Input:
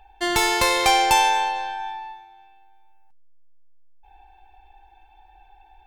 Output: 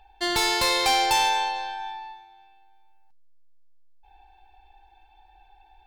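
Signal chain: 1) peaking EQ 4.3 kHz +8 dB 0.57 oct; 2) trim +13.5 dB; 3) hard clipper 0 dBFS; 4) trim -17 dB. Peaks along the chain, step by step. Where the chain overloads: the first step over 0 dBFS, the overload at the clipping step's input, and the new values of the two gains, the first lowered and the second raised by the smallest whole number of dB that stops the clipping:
-3.5 dBFS, +10.0 dBFS, 0.0 dBFS, -17.0 dBFS; step 2, 10.0 dB; step 2 +3.5 dB, step 4 -7 dB

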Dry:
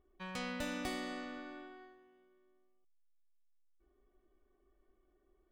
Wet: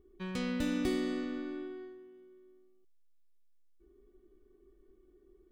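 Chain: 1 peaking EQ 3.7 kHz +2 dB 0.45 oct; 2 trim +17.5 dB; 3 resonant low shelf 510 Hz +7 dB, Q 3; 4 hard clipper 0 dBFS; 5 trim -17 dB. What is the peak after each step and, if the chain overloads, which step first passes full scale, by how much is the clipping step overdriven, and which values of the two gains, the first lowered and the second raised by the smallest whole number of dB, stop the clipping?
-26.5 dBFS, -9.0 dBFS, -5.0 dBFS, -5.0 dBFS, -22.0 dBFS; nothing clips

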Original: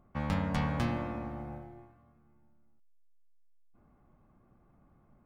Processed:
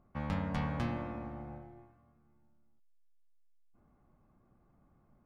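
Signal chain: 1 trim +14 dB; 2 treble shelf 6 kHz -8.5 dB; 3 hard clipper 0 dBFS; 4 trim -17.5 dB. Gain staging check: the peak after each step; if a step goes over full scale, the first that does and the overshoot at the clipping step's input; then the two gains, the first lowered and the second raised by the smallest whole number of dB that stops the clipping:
-4.5 dBFS, -4.5 dBFS, -4.5 dBFS, -22.0 dBFS; nothing clips

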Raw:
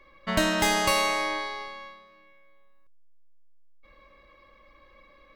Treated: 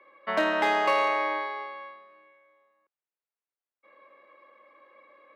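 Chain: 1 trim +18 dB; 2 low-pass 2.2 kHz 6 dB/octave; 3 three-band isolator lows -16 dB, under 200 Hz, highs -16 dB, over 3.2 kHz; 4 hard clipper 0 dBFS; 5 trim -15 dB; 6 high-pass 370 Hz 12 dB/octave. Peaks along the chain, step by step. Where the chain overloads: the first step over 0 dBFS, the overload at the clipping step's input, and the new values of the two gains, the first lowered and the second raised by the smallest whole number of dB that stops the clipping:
+8.5 dBFS, +6.0 dBFS, +5.0 dBFS, 0.0 dBFS, -15.0 dBFS, -13.0 dBFS; step 1, 5.0 dB; step 1 +13 dB, step 5 -10 dB

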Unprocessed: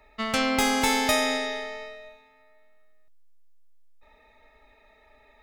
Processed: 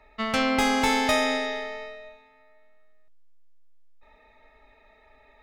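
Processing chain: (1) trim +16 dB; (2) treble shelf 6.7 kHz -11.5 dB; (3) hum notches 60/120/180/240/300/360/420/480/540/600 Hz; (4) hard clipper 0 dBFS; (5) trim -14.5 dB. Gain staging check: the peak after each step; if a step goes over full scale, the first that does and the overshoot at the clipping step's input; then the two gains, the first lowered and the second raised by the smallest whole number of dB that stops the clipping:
+6.5 dBFS, +5.0 dBFS, +5.5 dBFS, 0.0 dBFS, -14.5 dBFS; step 1, 5.5 dB; step 1 +10 dB, step 5 -8.5 dB

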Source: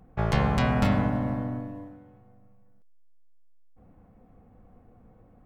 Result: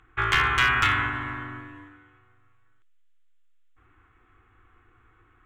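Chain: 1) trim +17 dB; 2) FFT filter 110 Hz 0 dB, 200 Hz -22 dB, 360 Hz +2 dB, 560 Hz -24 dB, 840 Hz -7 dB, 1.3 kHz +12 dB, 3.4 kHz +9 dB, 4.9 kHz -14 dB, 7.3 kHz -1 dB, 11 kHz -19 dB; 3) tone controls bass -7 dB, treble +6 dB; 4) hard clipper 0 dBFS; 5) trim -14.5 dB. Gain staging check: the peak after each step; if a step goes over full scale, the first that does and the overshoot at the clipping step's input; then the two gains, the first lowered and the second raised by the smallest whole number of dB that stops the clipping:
+7.5 dBFS, +9.0 dBFS, +9.5 dBFS, 0.0 dBFS, -14.5 dBFS; step 1, 9.5 dB; step 1 +7 dB, step 5 -4.5 dB

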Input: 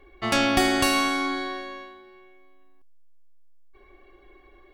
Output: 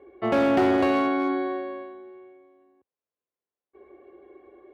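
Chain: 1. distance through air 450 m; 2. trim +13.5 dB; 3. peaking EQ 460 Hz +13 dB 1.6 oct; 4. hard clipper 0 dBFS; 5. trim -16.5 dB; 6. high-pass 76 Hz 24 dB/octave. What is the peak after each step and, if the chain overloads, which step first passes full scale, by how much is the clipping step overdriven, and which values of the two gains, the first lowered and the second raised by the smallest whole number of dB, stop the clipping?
-10.5 dBFS, +3.0 dBFS, +9.5 dBFS, 0.0 dBFS, -16.5 dBFS, -12.0 dBFS; step 2, 9.5 dB; step 2 +3.5 dB, step 5 -6.5 dB

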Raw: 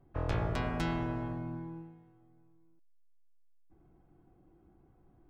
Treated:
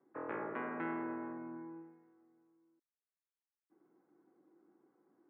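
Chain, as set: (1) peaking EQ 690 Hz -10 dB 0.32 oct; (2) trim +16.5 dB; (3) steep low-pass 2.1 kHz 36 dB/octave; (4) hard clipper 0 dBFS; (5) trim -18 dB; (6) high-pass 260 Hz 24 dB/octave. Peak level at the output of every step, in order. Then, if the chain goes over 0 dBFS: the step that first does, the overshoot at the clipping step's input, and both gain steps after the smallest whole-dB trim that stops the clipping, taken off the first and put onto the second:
-20.5 dBFS, -4.0 dBFS, -4.5 dBFS, -4.5 dBFS, -22.5 dBFS, -26.0 dBFS; nothing clips

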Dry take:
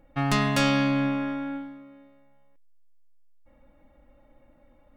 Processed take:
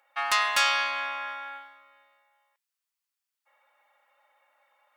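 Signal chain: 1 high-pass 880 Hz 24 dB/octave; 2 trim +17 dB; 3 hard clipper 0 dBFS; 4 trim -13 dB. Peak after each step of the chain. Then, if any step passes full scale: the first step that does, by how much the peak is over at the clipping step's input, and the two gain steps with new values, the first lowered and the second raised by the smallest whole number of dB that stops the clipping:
-11.5 dBFS, +5.5 dBFS, 0.0 dBFS, -13.0 dBFS; step 2, 5.5 dB; step 2 +11 dB, step 4 -7 dB

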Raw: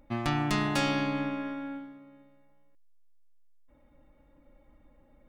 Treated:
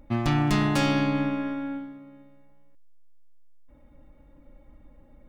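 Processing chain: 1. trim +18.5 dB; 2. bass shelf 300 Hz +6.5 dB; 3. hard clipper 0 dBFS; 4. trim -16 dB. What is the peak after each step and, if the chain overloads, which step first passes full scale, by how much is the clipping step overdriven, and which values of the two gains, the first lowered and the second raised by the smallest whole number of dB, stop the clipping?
+7.0 dBFS, +8.5 dBFS, 0.0 dBFS, -16.0 dBFS; step 1, 8.5 dB; step 1 +9.5 dB, step 4 -7 dB

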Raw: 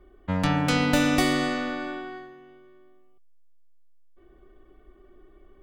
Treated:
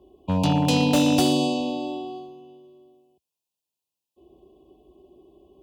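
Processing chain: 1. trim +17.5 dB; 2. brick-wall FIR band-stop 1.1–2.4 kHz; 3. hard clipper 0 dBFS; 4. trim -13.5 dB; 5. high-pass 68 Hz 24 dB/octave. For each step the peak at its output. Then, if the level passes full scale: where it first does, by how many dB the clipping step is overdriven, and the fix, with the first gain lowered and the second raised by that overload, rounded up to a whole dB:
+9.0 dBFS, +8.0 dBFS, 0.0 dBFS, -13.5 dBFS, -7.5 dBFS; step 1, 8.0 dB; step 1 +9.5 dB, step 4 -5.5 dB

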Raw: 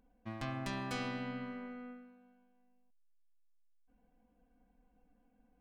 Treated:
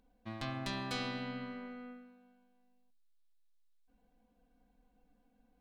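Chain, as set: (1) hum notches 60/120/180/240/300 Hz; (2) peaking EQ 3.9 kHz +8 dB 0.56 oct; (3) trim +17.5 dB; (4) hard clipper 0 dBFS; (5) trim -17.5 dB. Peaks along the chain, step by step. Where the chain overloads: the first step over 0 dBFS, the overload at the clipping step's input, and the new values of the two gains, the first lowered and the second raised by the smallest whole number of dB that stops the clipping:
-25.5 dBFS, -23.5 dBFS, -6.0 dBFS, -6.0 dBFS, -23.5 dBFS; nothing clips

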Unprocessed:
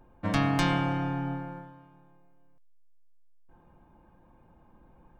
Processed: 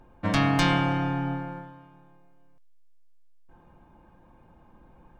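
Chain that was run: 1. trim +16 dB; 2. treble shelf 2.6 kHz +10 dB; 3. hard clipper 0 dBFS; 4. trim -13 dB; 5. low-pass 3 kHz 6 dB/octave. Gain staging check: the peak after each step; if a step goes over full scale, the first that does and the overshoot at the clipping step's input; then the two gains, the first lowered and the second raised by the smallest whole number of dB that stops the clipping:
+5.5 dBFS, +6.5 dBFS, 0.0 dBFS, -13.0 dBFS, -13.0 dBFS; step 1, 6.5 dB; step 1 +9 dB, step 4 -6 dB

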